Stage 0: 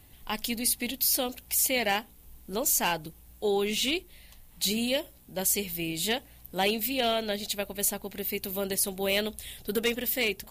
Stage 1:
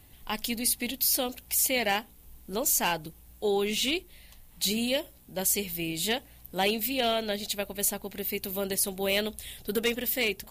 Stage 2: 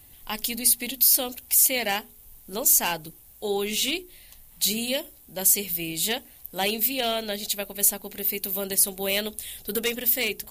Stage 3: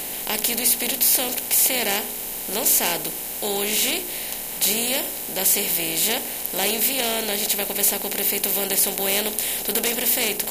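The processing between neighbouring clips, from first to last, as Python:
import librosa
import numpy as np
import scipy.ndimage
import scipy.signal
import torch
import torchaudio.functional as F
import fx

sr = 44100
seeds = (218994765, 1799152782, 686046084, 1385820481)

y1 = x
y2 = fx.high_shelf(y1, sr, hz=5700.0, db=9.0)
y2 = fx.hum_notches(y2, sr, base_hz=60, count=7)
y3 = fx.bin_compress(y2, sr, power=0.4)
y3 = F.gain(torch.from_numpy(y3), -3.5).numpy()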